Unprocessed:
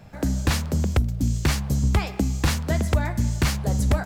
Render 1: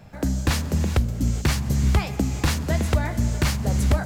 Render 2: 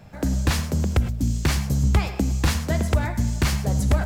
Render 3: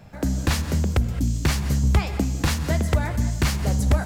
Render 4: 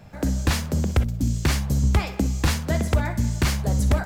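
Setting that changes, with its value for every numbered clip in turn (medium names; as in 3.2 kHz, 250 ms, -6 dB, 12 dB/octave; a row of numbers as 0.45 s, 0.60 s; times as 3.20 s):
gated-style reverb, gate: 460 ms, 130 ms, 240 ms, 80 ms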